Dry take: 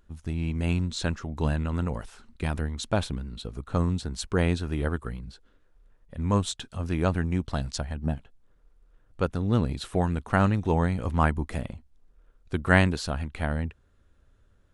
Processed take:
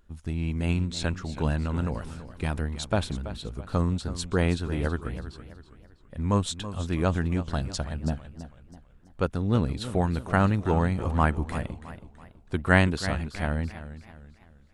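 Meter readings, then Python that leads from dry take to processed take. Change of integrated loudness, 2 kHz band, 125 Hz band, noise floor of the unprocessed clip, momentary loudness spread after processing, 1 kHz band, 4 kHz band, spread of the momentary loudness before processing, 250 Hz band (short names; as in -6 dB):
0.0 dB, +0.5 dB, 0.0 dB, -62 dBFS, 15 LU, +0.5 dB, 0.0 dB, 12 LU, 0.0 dB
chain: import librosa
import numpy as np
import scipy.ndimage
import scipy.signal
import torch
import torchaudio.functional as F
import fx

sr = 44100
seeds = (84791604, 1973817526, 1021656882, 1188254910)

y = fx.notch(x, sr, hz=6100.0, q=28.0)
y = fx.echo_warbled(y, sr, ms=328, feedback_pct=40, rate_hz=2.8, cents=101, wet_db=-13.0)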